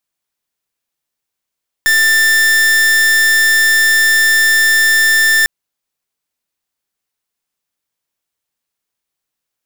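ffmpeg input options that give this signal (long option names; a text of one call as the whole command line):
ffmpeg -f lavfi -i "aevalsrc='0.299*(2*lt(mod(1780*t,1),0.43)-1)':duration=3.6:sample_rate=44100" out.wav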